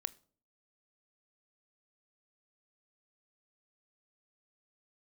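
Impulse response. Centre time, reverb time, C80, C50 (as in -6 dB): 2 ms, 0.50 s, 27.0 dB, 23.0 dB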